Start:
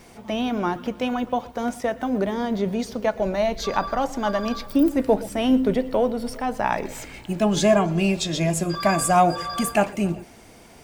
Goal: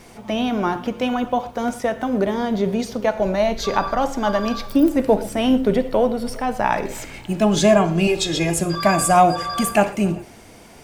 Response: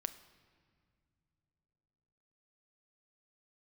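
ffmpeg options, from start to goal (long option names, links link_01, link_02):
-filter_complex "[0:a]asettb=1/sr,asplit=3[link_01][link_02][link_03];[link_01]atrim=end=8.074[link_04];[link_02]atrim=start=8.07:end=8.6,asetpts=PTS-STARTPTS,afade=type=in:duration=0.004:curve=qsin,afade=type=out:start_time=0.526:duration=0.004:curve=qsin,aecho=1:1:2.4:0.65,atrim=end_sample=23373[link_05];[link_03]atrim=start=8.596[link_06];[link_04][link_05]acrossfade=duration=0.004:curve1=hsin:curve2=qsin[link_07];[link_07][link_06]acrossfade=duration=0.004:curve1=qsin:curve2=hsin[link_08];[1:a]atrim=start_sample=2205,atrim=end_sample=3087,asetrate=28224,aresample=44100[link_09];[link_08][link_09]afir=irnorm=-1:irlink=0,volume=2.5dB"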